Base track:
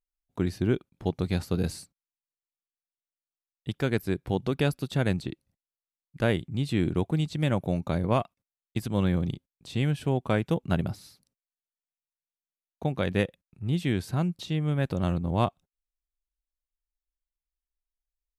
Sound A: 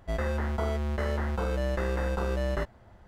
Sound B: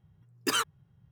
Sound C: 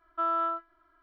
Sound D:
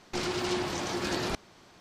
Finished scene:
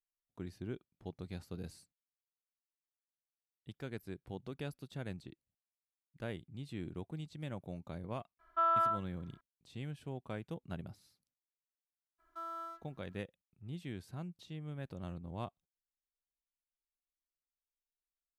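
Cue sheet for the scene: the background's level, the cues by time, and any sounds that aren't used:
base track −17 dB
0:08.39: mix in C −1.5 dB + parametric band 320 Hz −12.5 dB 0.27 octaves
0:12.18: mix in C −16.5 dB, fades 0.02 s + mu-law and A-law mismatch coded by mu
not used: A, B, D

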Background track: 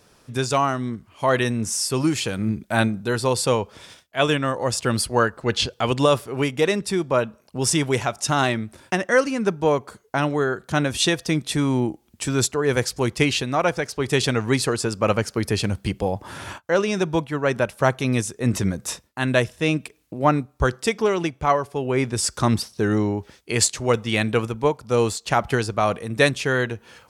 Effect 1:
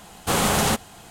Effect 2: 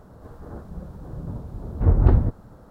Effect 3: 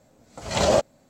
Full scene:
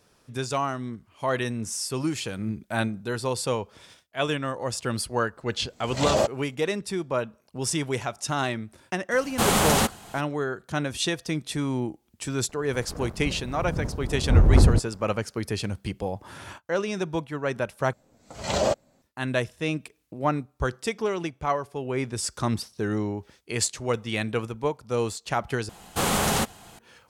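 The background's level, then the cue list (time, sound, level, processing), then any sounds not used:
background track −6.5 dB
0:05.46: mix in 3 −3 dB
0:09.11: mix in 1 −0.5 dB
0:12.49: mix in 2 −4 dB + leveller curve on the samples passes 2
0:17.93: overwrite with 3 −4 dB
0:25.69: overwrite with 1 −3 dB

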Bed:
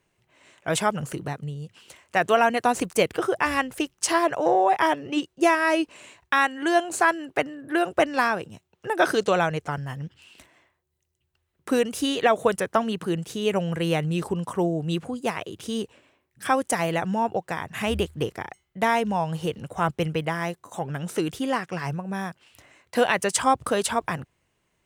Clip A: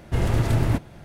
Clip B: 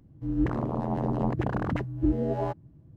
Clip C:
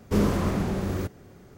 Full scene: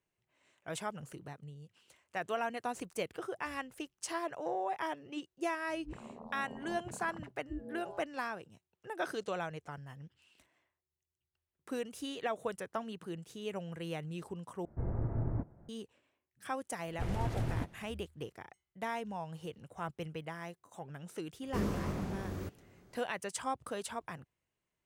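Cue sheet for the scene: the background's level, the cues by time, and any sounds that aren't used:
bed −16 dB
0:05.47: mix in B −17 dB + noise reduction from a noise print of the clip's start 15 dB
0:14.65: overwrite with A −13.5 dB + Gaussian smoothing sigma 6.9 samples
0:16.87: mix in A −14 dB + highs frequency-modulated by the lows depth 0.27 ms
0:21.42: mix in C −11.5 dB

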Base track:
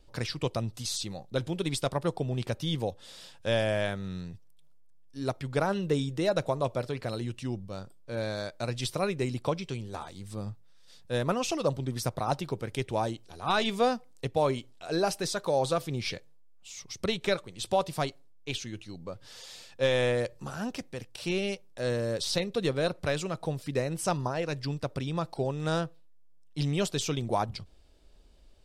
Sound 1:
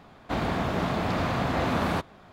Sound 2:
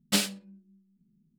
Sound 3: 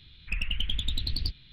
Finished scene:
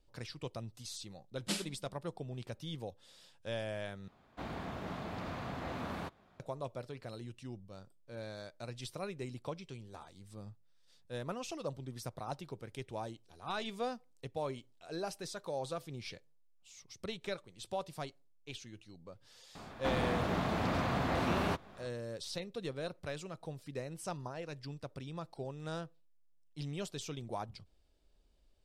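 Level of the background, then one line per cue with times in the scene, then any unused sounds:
base track −12 dB
0:01.36: mix in 2 −11.5 dB + Butterworth low-pass 12,000 Hz 96 dB per octave
0:04.08: overwrite with 1 −14.5 dB
0:19.55: mix in 1 −6.5 dB + multiband upward and downward compressor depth 40%
not used: 3

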